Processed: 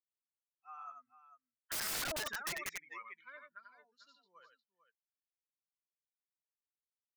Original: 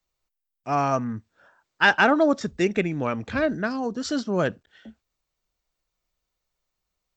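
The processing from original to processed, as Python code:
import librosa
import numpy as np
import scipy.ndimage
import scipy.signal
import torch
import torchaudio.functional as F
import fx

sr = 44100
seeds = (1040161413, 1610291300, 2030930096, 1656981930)

y = fx.bin_expand(x, sr, power=2.0)
y = fx.doppler_pass(y, sr, speed_mps=20, closest_m=2.4, pass_at_s=2.32)
y = fx.ladder_bandpass(y, sr, hz=1800.0, resonance_pct=40)
y = fx.echo_multitap(y, sr, ms=(90, 447), db=(-6.0, -13.0))
y = (np.mod(10.0 ** (46.5 / 20.0) * y + 1.0, 2.0) - 1.0) / 10.0 ** (46.5 / 20.0)
y = F.gain(torch.from_numpy(y), 13.5).numpy()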